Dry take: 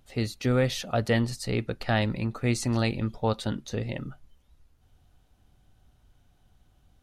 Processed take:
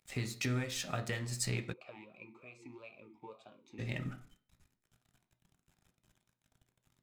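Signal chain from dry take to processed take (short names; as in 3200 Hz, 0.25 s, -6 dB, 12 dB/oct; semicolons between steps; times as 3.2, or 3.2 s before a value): compressor 6:1, threshold -34 dBFS, peak gain reduction 14.5 dB; crossover distortion -56 dBFS; reverb RT60 0.45 s, pre-delay 3 ms, DRR 7 dB; 1.72–3.78 vowel sweep a-u 3.8 Hz -> 1.4 Hz; gain +4 dB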